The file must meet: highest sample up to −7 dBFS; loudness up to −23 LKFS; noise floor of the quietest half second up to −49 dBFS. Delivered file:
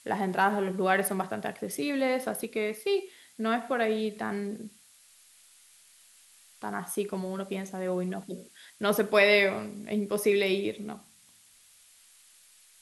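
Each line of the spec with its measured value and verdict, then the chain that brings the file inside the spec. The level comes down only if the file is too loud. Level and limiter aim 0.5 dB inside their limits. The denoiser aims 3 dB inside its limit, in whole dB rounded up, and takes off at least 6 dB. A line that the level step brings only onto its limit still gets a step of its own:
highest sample −8.0 dBFS: in spec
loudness −29.0 LKFS: in spec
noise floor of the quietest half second −59 dBFS: in spec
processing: no processing needed

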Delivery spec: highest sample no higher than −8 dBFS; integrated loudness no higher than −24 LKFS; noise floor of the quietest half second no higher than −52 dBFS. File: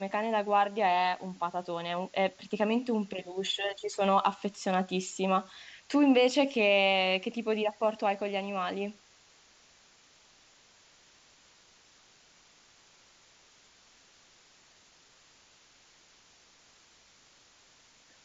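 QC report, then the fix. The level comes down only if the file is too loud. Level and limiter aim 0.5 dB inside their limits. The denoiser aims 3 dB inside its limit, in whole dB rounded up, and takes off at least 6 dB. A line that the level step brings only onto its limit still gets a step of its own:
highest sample −12.0 dBFS: in spec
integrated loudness −29.0 LKFS: in spec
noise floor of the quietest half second −61 dBFS: in spec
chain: no processing needed

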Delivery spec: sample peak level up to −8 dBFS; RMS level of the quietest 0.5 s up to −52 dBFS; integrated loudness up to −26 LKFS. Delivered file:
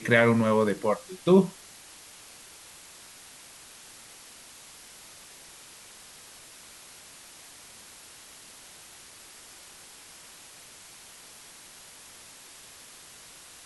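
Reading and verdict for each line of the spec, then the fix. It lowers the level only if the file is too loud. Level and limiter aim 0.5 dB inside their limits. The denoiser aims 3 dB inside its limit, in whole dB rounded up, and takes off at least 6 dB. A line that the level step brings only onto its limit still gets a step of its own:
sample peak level −6.5 dBFS: out of spec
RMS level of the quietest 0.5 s −49 dBFS: out of spec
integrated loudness −23.5 LKFS: out of spec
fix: broadband denoise 6 dB, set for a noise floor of −49 dBFS
level −3 dB

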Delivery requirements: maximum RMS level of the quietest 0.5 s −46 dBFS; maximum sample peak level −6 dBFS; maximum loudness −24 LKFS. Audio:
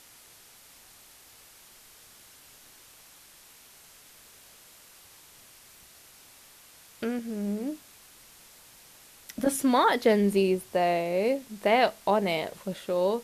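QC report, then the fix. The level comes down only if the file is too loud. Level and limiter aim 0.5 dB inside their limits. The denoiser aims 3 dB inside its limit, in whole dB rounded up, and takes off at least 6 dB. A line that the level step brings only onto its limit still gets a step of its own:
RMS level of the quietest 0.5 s −54 dBFS: in spec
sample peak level −10.5 dBFS: in spec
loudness −26.5 LKFS: in spec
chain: no processing needed

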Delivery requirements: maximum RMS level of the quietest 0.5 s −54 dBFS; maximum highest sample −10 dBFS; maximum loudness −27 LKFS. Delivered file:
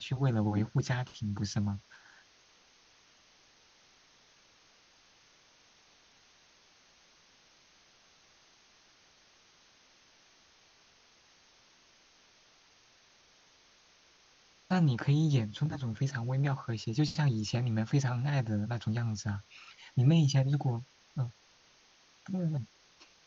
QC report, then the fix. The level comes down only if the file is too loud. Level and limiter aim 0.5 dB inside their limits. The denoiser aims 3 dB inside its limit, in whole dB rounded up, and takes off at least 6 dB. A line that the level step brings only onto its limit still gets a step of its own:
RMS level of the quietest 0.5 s −64 dBFS: in spec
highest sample −15.0 dBFS: in spec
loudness −32.0 LKFS: in spec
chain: no processing needed

